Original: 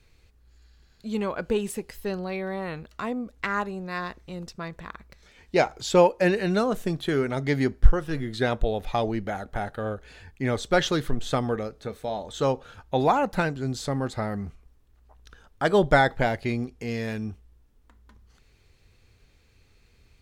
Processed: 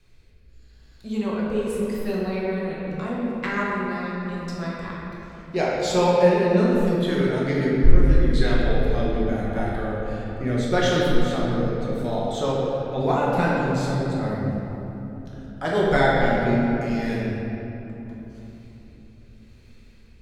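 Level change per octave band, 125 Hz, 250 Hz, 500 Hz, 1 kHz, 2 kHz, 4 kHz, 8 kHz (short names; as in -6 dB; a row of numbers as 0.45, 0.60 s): +5.0, +5.0, +3.0, +1.0, +1.5, +1.5, 0.0 dB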